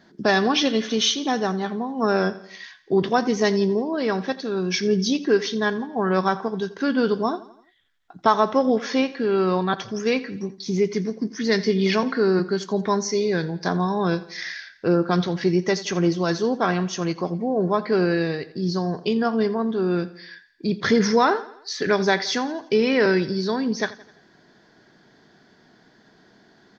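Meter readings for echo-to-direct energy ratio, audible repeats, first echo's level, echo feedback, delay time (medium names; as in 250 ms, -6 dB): -16.5 dB, 3, -18.0 dB, 51%, 85 ms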